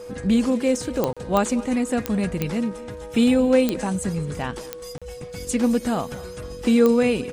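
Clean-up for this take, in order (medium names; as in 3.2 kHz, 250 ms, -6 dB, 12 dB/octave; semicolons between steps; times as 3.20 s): de-click; band-stop 490 Hz, Q 30; interpolate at 1.13/4.98 s, 36 ms; inverse comb 218 ms -19.5 dB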